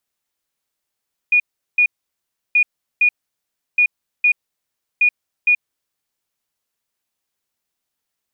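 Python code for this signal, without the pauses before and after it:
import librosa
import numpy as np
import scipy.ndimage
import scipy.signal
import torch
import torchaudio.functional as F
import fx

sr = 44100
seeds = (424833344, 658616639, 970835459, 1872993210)

y = fx.beep_pattern(sr, wave='sine', hz=2450.0, on_s=0.08, off_s=0.38, beeps=2, pause_s=0.69, groups=4, level_db=-10.0)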